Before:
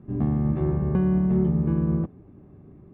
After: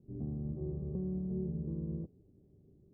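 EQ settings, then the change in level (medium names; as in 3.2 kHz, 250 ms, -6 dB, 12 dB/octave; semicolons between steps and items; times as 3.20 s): four-pole ladder low-pass 530 Hz, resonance 45%; peaking EQ 330 Hz -7 dB 1.9 oct; -4.0 dB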